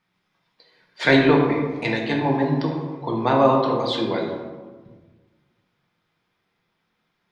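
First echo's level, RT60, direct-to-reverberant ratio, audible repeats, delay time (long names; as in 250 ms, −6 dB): no echo audible, 1.4 s, −1.0 dB, no echo audible, no echo audible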